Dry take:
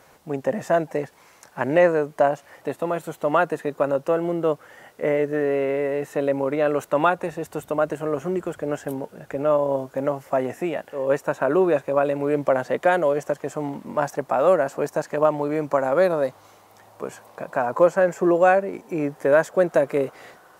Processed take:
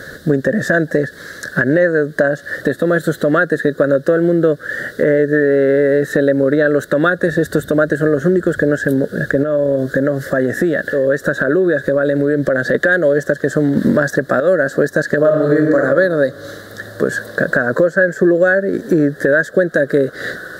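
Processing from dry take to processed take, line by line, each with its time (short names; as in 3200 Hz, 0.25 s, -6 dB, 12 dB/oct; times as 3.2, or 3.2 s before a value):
9.43–12.75 compressor 2:1, threshold -36 dBFS
13.77–14.4 gain +10.5 dB
15.17–15.78 reverb throw, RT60 1.2 s, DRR -0.5 dB
whole clip: EQ curve 270 Hz 0 dB, 580 Hz -3 dB, 890 Hz -28 dB, 1700 Hz +10 dB, 2400 Hz -26 dB, 3800 Hz +2 dB, 5800 Hz -8 dB; compressor 6:1, threshold -33 dBFS; maximiser +24.5 dB; gain -2 dB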